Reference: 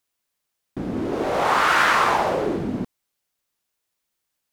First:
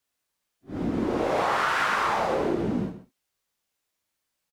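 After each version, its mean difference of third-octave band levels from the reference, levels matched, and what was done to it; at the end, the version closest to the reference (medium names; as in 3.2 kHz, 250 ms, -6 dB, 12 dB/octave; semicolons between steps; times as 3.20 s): 3.0 dB: phase randomisation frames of 200 ms; treble shelf 11 kHz -5 dB; compression 10:1, threshold -21 dBFS, peak gain reduction 8 dB; on a send: delay 127 ms -13.5 dB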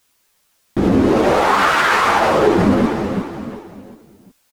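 4.5 dB: compression, threshold -21 dBFS, peak gain reduction 7.5 dB; on a send: feedback delay 364 ms, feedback 38%, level -11 dB; on the sum: loudness maximiser +22 dB; three-phase chorus; trim -2 dB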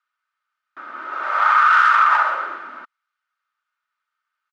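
16.0 dB: tracing distortion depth 0.29 ms; ladder band-pass 1.4 kHz, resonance 80%; comb 3.3 ms, depth 45%; loudness maximiser +18 dB; trim -5 dB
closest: first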